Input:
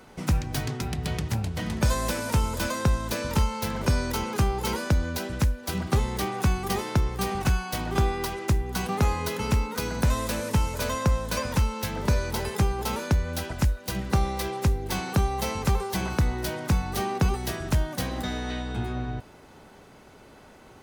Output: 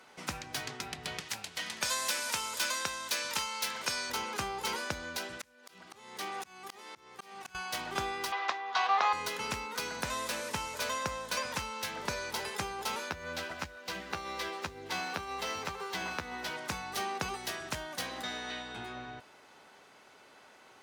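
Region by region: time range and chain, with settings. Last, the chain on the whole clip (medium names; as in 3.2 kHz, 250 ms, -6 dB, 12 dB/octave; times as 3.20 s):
1.20–4.10 s: high-pass 130 Hz 6 dB/octave + tilt shelf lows -5.5 dB, about 1.4 kHz
5.37–7.55 s: high-pass 150 Hz + slow attack 459 ms
8.32–9.13 s: overdrive pedal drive 9 dB, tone 3.3 kHz, clips at -14.5 dBFS + cabinet simulation 450–5700 Hz, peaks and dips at 730 Hz +9 dB, 1.1 kHz +9 dB, 1.8 kHz +3 dB, 3.7 kHz +5 dB
13.09–16.57 s: median filter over 5 samples + compression 4:1, threshold -24 dBFS + doubling 12 ms -4.5 dB
whole clip: high-pass 1.3 kHz 6 dB/octave; treble shelf 10 kHz -11.5 dB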